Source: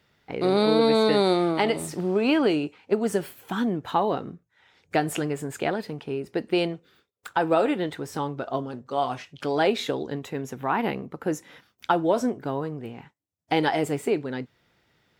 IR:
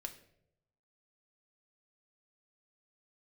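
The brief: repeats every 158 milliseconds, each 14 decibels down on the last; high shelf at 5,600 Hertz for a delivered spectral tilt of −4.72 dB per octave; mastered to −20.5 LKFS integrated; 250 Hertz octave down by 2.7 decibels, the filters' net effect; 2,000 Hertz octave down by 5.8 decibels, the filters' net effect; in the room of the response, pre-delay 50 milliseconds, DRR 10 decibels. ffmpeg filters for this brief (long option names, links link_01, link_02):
-filter_complex "[0:a]equalizer=frequency=250:width_type=o:gain=-3.5,equalizer=frequency=2000:width_type=o:gain=-9,highshelf=frequency=5600:gain=8,aecho=1:1:158|316:0.2|0.0399,asplit=2[link_01][link_02];[1:a]atrim=start_sample=2205,adelay=50[link_03];[link_02][link_03]afir=irnorm=-1:irlink=0,volume=-7dB[link_04];[link_01][link_04]amix=inputs=2:normalize=0,volume=6.5dB"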